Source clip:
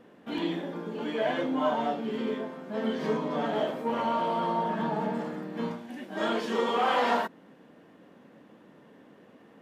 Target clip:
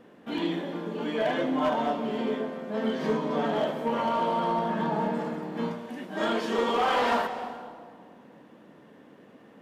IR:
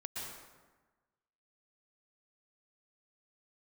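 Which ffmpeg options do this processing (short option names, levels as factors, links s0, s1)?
-filter_complex "[0:a]asoftclip=type=hard:threshold=0.0891,asplit=2[s0][s1];[1:a]atrim=start_sample=2205,asetrate=27783,aresample=44100[s2];[s1][s2]afir=irnorm=-1:irlink=0,volume=0.266[s3];[s0][s3]amix=inputs=2:normalize=0"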